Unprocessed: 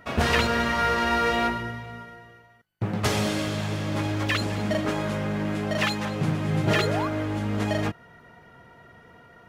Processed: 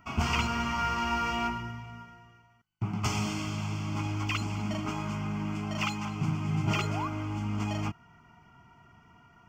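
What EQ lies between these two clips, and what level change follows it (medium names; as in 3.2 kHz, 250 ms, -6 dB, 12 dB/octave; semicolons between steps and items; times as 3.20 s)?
static phaser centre 2.6 kHz, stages 8; -3.0 dB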